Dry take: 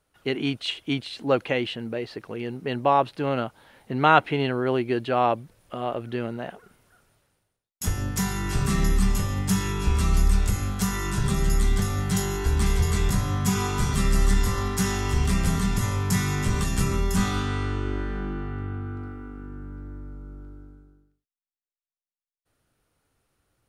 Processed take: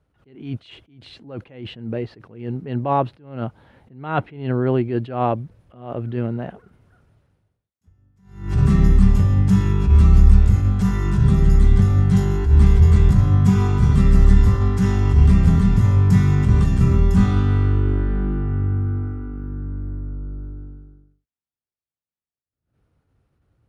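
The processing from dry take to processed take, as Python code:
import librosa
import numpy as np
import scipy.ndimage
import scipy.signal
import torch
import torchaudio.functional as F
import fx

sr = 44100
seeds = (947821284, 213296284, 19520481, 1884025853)

y = scipy.signal.sosfilt(scipy.signal.butter(2, 67.0, 'highpass', fs=sr, output='sos'), x)
y = fx.riaa(y, sr, side='playback')
y = fx.attack_slew(y, sr, db_per_s=110.0)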